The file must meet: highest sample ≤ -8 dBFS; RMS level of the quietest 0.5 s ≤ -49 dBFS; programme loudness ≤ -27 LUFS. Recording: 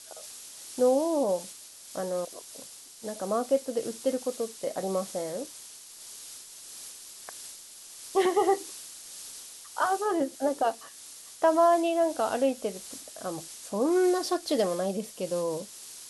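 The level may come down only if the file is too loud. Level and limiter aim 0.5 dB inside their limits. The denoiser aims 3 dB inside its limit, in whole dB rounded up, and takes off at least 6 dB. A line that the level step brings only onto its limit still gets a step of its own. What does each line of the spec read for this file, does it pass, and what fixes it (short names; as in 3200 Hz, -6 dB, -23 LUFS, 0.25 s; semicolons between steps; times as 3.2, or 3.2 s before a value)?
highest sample -12.0 dBFS: OK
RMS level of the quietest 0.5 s -47 dBFS: fail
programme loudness -28.5 LUFS: OK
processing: denoiser 6 dB, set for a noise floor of -47 dBFS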